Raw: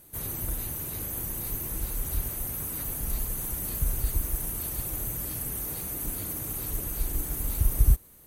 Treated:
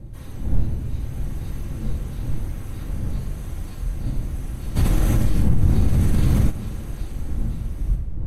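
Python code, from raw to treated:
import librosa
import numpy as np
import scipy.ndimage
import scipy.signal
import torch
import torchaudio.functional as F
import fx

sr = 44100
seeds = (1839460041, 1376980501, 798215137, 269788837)

y = fx.dmg_wind(x, sr, seeds[0], corner_hz=98.0, level_db=-26.0)
y = fx.room_shoebox(y, sr, seeds[1], volume_m3=1500.0, walls='mixed', distance_m=2.2)
y = fx.rider(y, sr, range_db=3, speed_s=0.5)
y = scipy.signal.sosfilt(scipy.signal.butter(2, 5000.0, 'lowpass', fs=sr, output='sos'), y)
y = fx.env_flatten(y, sr, amount_pct=70, at=(4.75, 6.49), fade=0.02)
y = y * 10.0 ** (-6.5 / 20.0)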